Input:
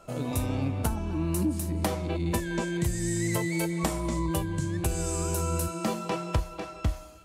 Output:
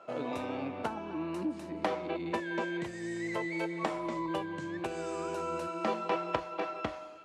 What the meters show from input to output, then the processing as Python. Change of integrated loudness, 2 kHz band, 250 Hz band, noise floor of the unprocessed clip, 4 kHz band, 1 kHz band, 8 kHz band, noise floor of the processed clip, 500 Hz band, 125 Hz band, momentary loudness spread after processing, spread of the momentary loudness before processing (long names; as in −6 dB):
−6.0 dB, −1.5 dB, −6.0 dB, −44 dBFS, −6.0 dB, +0.5 dB, −19.5 dB, −44 dBFS, −1.5 dB, −17.5 dB, 4 LU, 4 LU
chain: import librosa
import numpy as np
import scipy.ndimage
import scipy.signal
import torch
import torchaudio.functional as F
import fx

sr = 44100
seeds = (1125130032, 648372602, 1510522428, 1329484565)

y = fx.rider(x, sr, range_db=10, speed_s=0.5)
y = fx.bandpass_edges(y, sr, low_hz=360.0, high_hz=2800.0)